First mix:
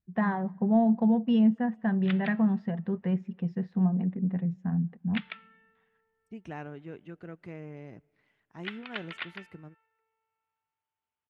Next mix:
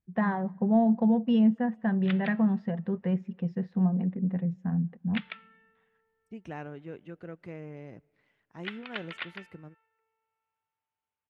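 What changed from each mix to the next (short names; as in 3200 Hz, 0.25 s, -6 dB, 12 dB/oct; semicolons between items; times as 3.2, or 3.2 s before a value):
master: add bell 520 Hz +5.5 dB 0.2 oct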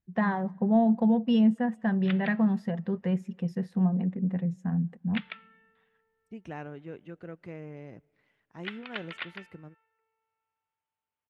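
first voice: remove air absorption 220 m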